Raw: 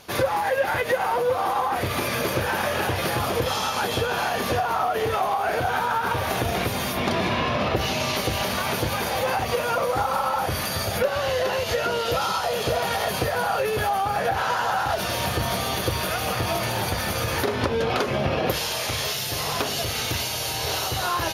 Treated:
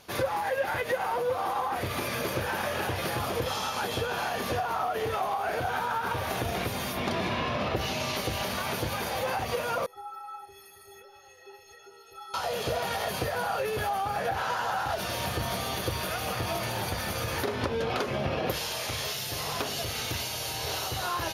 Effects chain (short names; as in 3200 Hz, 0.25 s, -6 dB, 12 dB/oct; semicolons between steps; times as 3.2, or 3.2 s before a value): 9.86–12.34 metallic resonator 390 Hz, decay 0.4 s, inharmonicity 0.03; gain -6 dB